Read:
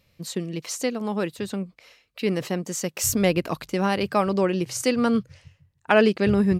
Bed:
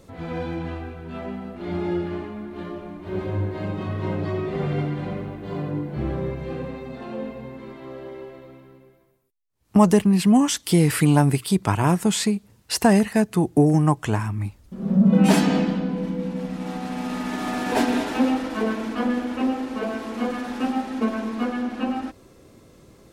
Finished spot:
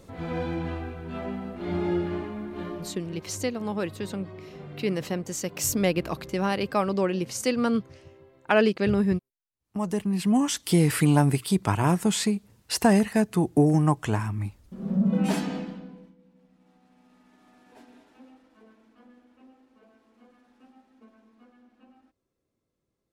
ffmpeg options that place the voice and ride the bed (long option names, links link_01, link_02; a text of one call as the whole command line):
ffmpeg -i stem1.wav -i stem2.wav -filter_complex "[0:a]adelay=2600,volume=-3dB[link_01];[1:a]volume=12.5dB,afade=type=out:start_time=2.67:duration=0.51:silence=0.16788,afade=type=in:start_time=9.74:duration=0.93:silence=0.211349,afade=type=out:start_time=14.38:duration=1.77:silence=0.0375837[link_02];[link_01][link_02]amix=inputs=2:normalize=0" out.wav